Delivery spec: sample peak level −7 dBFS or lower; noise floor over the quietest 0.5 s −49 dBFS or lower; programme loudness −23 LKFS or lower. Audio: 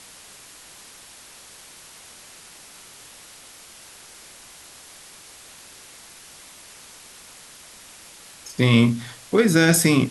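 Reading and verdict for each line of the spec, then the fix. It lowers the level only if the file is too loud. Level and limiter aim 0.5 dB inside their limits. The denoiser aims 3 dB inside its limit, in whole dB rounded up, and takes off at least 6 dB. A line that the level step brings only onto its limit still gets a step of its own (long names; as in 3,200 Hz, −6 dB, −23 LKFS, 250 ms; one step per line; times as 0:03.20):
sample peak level −4.0 dBFS: out of spec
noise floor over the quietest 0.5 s −46 dBFS: out of spec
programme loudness −18.5 LKFS: out of spec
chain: level −5 dB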